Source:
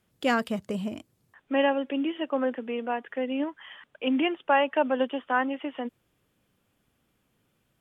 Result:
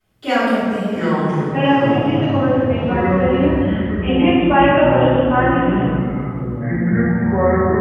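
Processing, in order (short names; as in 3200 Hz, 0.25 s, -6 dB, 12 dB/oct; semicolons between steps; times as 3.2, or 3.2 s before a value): reverb RT60 2.1 s, pre-delay 3 ms, DRR -20.5 dB; echoes that change speed 0.584 s, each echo -7 st, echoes 3; gain -11 dB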